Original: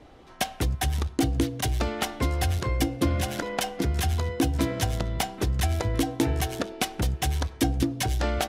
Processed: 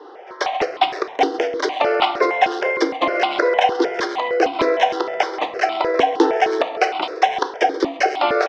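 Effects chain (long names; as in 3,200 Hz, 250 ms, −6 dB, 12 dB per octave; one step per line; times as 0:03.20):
Chebyshev band-pass filter 370–5,400 Hz, order 4
high-shelf EQ 2,200 Hz −9.5 dB
slap from a distant wall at 23 metres, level −17 dB
convolution reverb RT60 0.85 s, pre-delay 7 ms, DRR 8.5 dB
boost into a limiter +18 dB
step-sequenced phaser 6.5 Hz 630–1,700 Hz
level +1 dB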